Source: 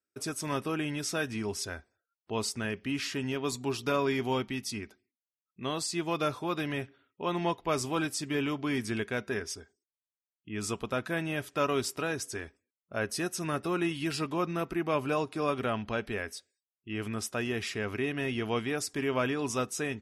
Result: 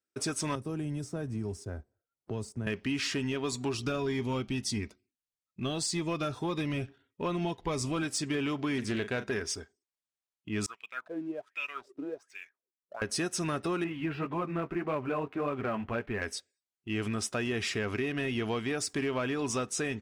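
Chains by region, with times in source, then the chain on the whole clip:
0.55–2.67 s: FFT filter 120 Hz 0 dB, 200 Hz -6 dB, 540 Hz -9 dB, 3 kHz -27 dB, 8.5 kHz -14 dB + three bands compressed up and down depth 70%
3.74–8.03 s: bass shelf 110 Hz +9 dB + Shepard-style phaser rising 1.7 Hz
8.78–9.31 s: treble shelf 5.7 kHz -5.5 dB + doubling 39 ms -13 dB + loudspeaker Doppler distortion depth 0.19 ms
10.66–13.02 s: treble shelf 3.3 kHz +7 dB + wah-wah 1.3 Hz 280–2600 Hz, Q 8.1
13.84–16.22 s: low-pass 2.5 kHz 24 dB/octave + flange 1.8 Hz, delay 6.3 ms, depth 7.7 ms, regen -22%
whole clip: steep low-pass 9.9 kHz 36 dB/octave; compression, threshold -32 dBFS; waveshaping leveller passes 1; trim +1 dB

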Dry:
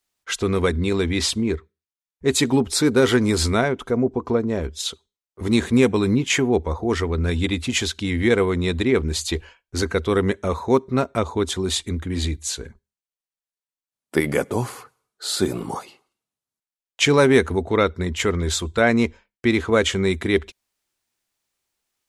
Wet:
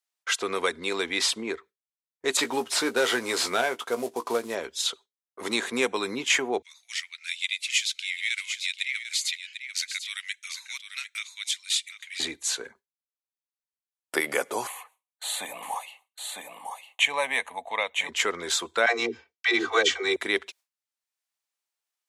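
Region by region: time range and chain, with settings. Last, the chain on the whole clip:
2.37–4.55 s: CVSD coder 64 kbps + doubling 17 ms -9 dB
6.62–12.20 s: Chebyshev high-pass 2.2 kHz, order 4 + delay 745 ms -11.5 dB
14.67–18.09 s: high-pass 480 Hz 6 dB/octave + static phaser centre 1.4 kHz, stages 6 + delay 954 ms -7 dB
18.86–20.16 s: resonant high shelf 7.6 kHz -9.5 dB, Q 1.5 + comb 2.6 ms, depth 68% + phase dispersion lows, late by 123 ms, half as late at 340 Hz
whole clip: high-pass 620 Hz 12 dB/octave; gate with hold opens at -49 dBFS; three bands compressed up and down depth 40%

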